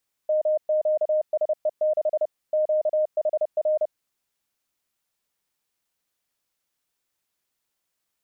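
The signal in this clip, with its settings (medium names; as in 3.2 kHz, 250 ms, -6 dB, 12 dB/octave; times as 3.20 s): Morse "MQSE6 QHR" 30 wpm 616 Hz -18.5 dBFS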